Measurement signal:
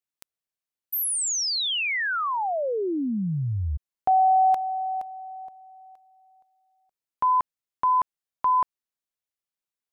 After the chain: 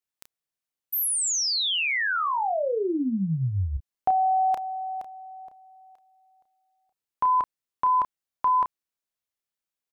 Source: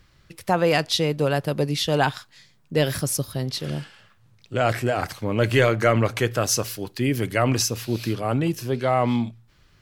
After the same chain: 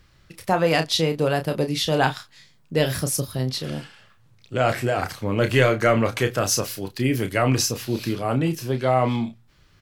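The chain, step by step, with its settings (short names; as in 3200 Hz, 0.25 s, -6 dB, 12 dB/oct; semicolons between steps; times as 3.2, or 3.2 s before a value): doubler 31 ms -8 dB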